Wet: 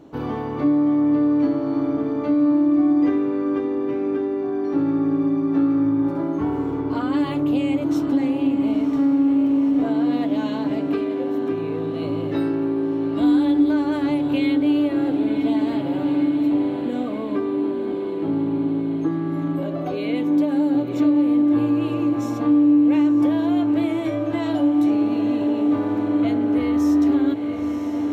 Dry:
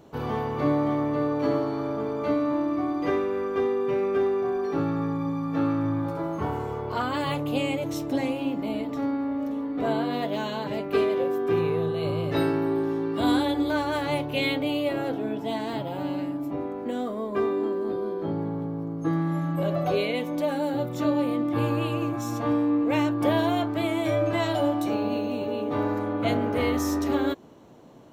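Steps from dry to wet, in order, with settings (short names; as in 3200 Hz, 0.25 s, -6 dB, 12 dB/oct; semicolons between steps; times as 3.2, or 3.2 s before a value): high shelf 6800 Hz -8 dB; diffused feedback echo 0.99 s, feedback 72%, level -12 dB; compressor, threshold -26 dBFS, peak gain reduction 8.5 dB; bell 290 Hz +13 dB 0.33 oct; gain +1.5 dB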